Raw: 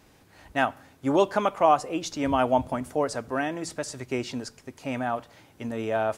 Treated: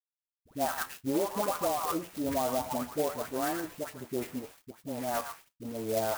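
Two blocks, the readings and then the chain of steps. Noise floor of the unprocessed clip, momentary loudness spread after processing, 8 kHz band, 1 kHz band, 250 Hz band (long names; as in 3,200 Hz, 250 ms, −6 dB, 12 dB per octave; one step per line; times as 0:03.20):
−58 dBFS, 12 LU, +0.5 dB, −7.5 dB, −5.5 dB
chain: adaptive Wiener filter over 25 samples
low-shelf EQ 230 Hz −6.5 dB
echo through a band-pass that steps 115 ms, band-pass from 1,300 Hz, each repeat 1.4 octaves, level −6 dB
bit-depth reduction 8 bits, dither none
all-pass dispersion highs, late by 111 ms, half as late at 1,100 Hz
flanger 0.84 Hz, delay 8.8 ms, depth 4.5 ms, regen +67%
brickwall limiter −23 dBFS, peak gain reduction 9.5 dB
treble cut that deepens with the level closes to 740 Hz, closed at −27 dBFS
dynamic equaliser 2,200 Hz, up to +4 dB, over −52 dBFS, Q 0.75
converter with an unsteady clock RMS 0.074 ms
level +2.5 dB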